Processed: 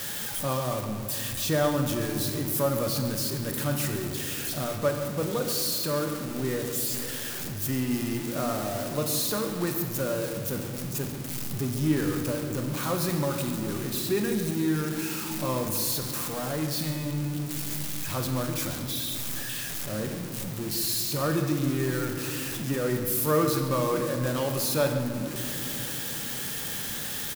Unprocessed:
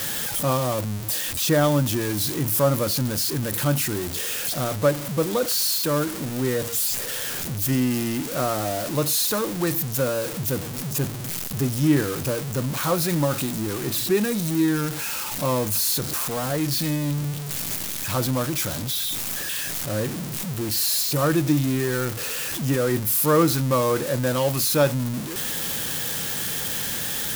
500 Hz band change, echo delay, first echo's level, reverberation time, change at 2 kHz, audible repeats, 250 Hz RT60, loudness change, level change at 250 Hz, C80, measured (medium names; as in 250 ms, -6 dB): -4.5 dB, 138 ms, -14.0 dB, 2.9 s, -5.0 dB, 1, 4.7 s, -5.0 dB, -4.5 dB, 6.5 dB